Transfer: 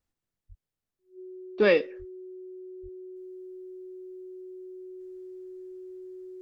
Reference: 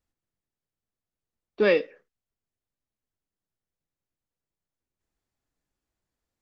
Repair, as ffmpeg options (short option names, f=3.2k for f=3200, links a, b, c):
-filter_complex "[0:a]bandreject=f=370:w=30,asplit=3[a][b][c];[a]afade=t=out:st=0.48:d=0.02[d];[b]highpass=f=140:w=0.5412,highpass=f=140:w=1.3066,afade=t=in:st=0.48:d=0.02,afade=t=out:st=0.6:d=0.02[e];[c]afade=t=in:st=0.6:d=0.02[f];[d][e][f]amix=inputs=3:normalize=0,asplit=3[g][h][i];[g]afade=t=out:st=1.98:d=0.02[j];[h]highpass=f=140:w=0.5412,highpass=f=140:w=1.3066,afade=t=in:st=1.98:d=0.02,afade=t=out:st=2.1:d=0.02[k];[i]afade=t=in:st=2.1:d=0.02[l];[j][k][l]amix=inputs=3:normalize=0,asplit=3[m][n][o];[m]afade=t=out:st=2.82:d=0.02[p];[n]highpass=f=140:w=0.5412,highpass=f=140:w=1.3066,afade=t=in:st=2.82:d=0.02,afade=t=out:st=2.94:d=0.02[q];[o]afade=t=in:st=2.94:d=0.02[r];[p][q][r]amix=inputs=3:normalize=0,asetnsamples=n=441:p=0,asendcmd='3.16 volume volume -8.5dB',volume=0dB"